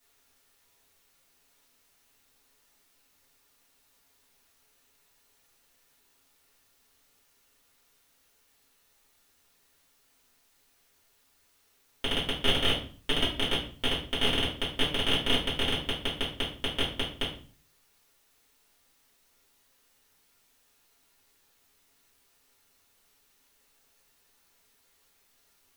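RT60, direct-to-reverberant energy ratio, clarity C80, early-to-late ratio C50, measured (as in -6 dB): 0.45 s, -8.5 dB, 11.5 dB, 7.0 dB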